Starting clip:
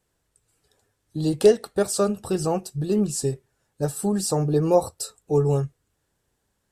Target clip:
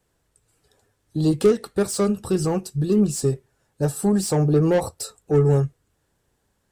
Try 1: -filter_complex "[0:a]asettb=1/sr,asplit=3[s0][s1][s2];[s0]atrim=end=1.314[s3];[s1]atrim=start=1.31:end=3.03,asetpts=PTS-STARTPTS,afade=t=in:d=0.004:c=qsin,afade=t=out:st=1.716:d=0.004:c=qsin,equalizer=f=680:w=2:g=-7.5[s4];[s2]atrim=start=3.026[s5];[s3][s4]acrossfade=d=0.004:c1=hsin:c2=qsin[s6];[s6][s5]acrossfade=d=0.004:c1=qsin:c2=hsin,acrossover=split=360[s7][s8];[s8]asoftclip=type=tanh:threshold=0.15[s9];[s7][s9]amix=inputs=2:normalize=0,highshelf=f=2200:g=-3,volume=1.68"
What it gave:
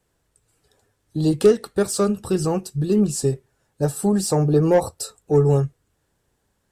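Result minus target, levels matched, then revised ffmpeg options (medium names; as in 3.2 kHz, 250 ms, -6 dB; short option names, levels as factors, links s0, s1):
saturation: distortion -7 dB
-filter_complex "[0:a]asettb=1/sr,asplit=3[s0][s1][s2];[s0]atrim=end=1.314[s3];[s1]atrim=start=1.31:end=3.03,asetpts=PTS-STARTPTS,afade=t=in:d=0.004:c=qsin,afade=t=out:st=1.716:d=0.004:c=qsin,equalizer=f=680:w=2:g=-7.5[s4];[s2]atrim=start=3.026[s5];[s3][s4]acrossfade=d=0.004:c1=hsin:c2=qsin[s6];[s6][s5]acrossfade=d=0.004:c1=qsin:c2=hsin,acrossover=split=360[s7][s8];[s8]asoftclip=type=tanh:threshold=0.0631[s9];[s7][s9]amix=inputs=2:normalize=0,highshelf=f=2200:g=-3,volume=1.68"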